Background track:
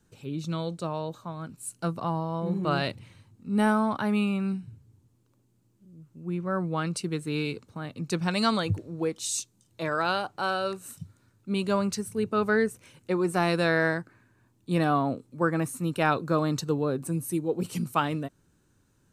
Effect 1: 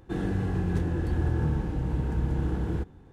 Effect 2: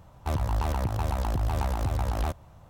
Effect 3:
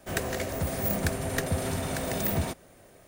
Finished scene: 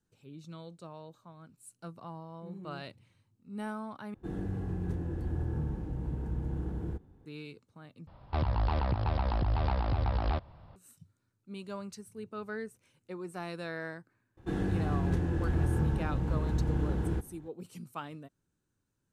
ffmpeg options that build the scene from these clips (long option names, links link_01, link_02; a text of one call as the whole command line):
ffmpeg -i bed.wav -i cue0.wav -i cue1.wav -filter_complex "[1:a]asplit=2[link_01][link_02];[0:a]volume=-15dB[link_03];[link_01]equalizer=frequency=3300:width=0.32:gain=-7.5[link_04];[2:a]aresample=11025,aresample=44100[link_05];[link_03]asplit=3[link_06][link_07][link_08];[link_06]atrim=end=4.144[link_09];[link_04]atrim=end=3.12,asetpts=PTS-STARTPTS,volume=-7dB[link_10];[link_07]atrim=start=7.256:end=8.074[link_11];[link_05]atrim=end=2.69,asetpts=PTS-STARTPTS,volume=-2dB[link_12];[link_08]atrim=start=10.756[link_13];[link_02]atrim=end=3.12,asetpts=PTS-STARTPTS,volume=-2.5dB,afade=type=in:duration=0.004:curve=hsin,afade=type=out:start_time=3.116:duration=0.004:curve=hsin,adelay=14370[link_14];[link_09][link_10]acrossfade=duration=0.004:curve1=hsin:curve2=hsin[link_15];[link_15][link_11]acrossfade=duration=0.004:curve1=hsin:curve2=hsin[link_16];[link_16][link_12]acrossfade=duration=0.004:curve1=hsin:curve2=hsin[link_17];[link_17][link_13]acrossfade=duration=0.004:curve1=hsin:curve2=hsin[link_18];[link_18][link_14]amix=inputs=2:normalize=0" out.wav